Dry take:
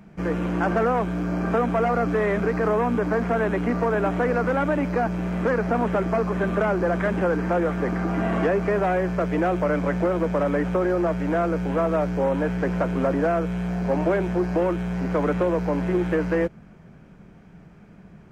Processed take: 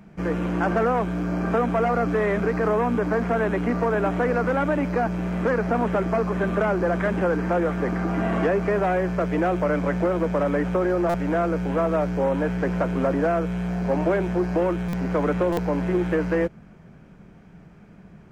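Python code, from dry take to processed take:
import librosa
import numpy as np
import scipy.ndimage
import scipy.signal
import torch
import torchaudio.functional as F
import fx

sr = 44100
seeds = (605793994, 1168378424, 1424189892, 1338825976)

y = fx.buffer_glitch(x, sr, at_s=(11.09, 14.88, 15.52), block=256, repeats=8)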